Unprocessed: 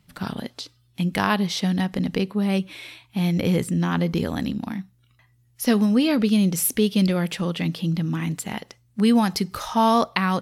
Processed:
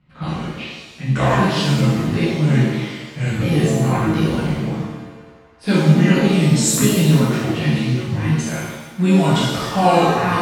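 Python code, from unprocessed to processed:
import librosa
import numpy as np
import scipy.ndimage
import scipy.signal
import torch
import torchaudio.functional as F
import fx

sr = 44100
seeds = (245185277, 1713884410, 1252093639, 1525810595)

p1 = fx.pitch_ramps(x, sr, semitones=-9.0, every_ms=682)
p2 = p1 + fx.echo_wet_bandpass(p1, sr, ms=151, feedback_pct=85, hz=1300.0, wet_db=-22.5, dry=0)
p3 = fx.env_lowpass(p2, sr, base_hz=2300.0, full_db=-21.5)
p4 = fx.rev_shimmer(p3, sr, seeds[0], rt60_s=1.1, semitones=7, shimmer_db=-8, drr_db=-9.5)
y = p4 * librosa.db_to_amplitude(-3.0)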